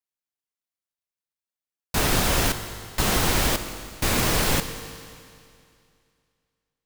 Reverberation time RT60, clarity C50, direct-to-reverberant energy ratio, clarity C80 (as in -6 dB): 2.4 s, 9.5 dB, 8.5 dB, 10.0 dB